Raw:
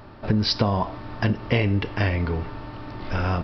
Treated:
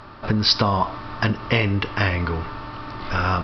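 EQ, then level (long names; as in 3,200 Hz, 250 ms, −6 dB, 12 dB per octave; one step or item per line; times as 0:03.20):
high-frequency loss of the air 64 metres
parametric band 1,200 Hz +8.5 dB 0.68 octaves
high-shelf EQ 2,800 Hz +12 dB
0.0 dB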